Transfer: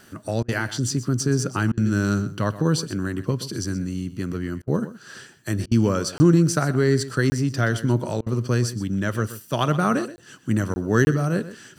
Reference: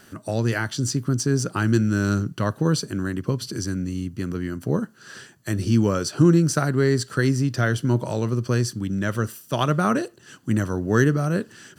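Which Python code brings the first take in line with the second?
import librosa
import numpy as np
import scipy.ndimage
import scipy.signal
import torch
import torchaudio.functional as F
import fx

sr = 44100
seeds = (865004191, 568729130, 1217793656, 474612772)

y = fx.fix_interpolate(x, sr, at_s=(6.18, 7.3, 10.16, 10.74, 11.05), length_ms=20.0)
y = fx.fix_interpolate(y, sr, at_s=(0.43, 1.72, 4.62, 5.66, 8.21), length_ms=53.0)
y = fx.fix_echo_inverse(y, sr, delay_ms=125, level_db=-14.5)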